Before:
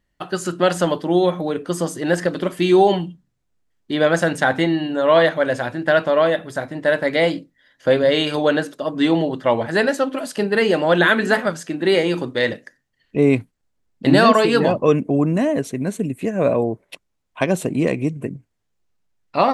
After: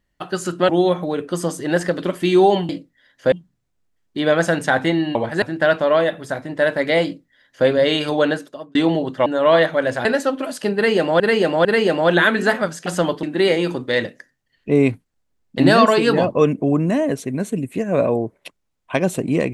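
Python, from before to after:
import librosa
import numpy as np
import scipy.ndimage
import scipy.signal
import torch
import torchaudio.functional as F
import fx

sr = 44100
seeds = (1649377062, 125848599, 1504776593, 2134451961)

y = fx.edit(x, sr, fx.move(start_s=0.69, length_s=0.37, to_s=11.7),
    fx.swap(start_s=4.89, length_s=0.79, other_s=9.52, other_length_s=0.27),
    fx.duplicate(start_s=7.3, length_s=0.63, to_s=3.06),
    fx.fade_out_span(start_s=8.55, length_s=0.46),
    fx.repeat(start_s=10.49, length_s=0.45, count=3), tone=tone)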